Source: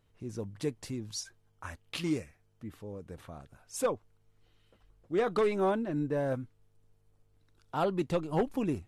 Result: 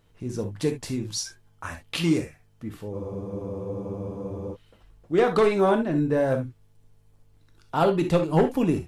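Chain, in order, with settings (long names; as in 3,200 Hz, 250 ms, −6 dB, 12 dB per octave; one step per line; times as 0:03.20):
reverb whose tail is shaped and stops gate 90 ms flat, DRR 5.5 dB
frozen spectrum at 0:02.96, 1.59 s
level +7.5 dB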